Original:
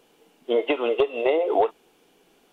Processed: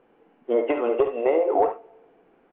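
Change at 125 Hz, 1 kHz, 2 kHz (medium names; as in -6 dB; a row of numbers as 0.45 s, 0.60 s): no reading, +1.0 dB, -5.0 dB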